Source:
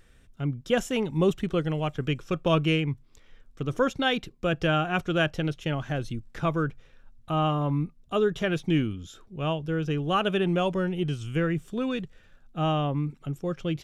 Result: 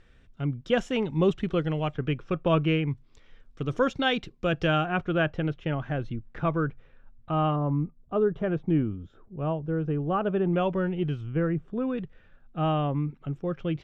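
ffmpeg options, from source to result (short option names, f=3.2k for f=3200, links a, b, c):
-af "asetnsamples=n=441:p=0,asendcmd='1.94 lowpass f 2500;2.91 lowpass f 5300;4.85 lowpass f 2200;7.56 lowpass f 1100;10.53 lowpass f 2300;11.21 lowpass f 1300;11.98 lowpass f 2500',lowpass=4.2k"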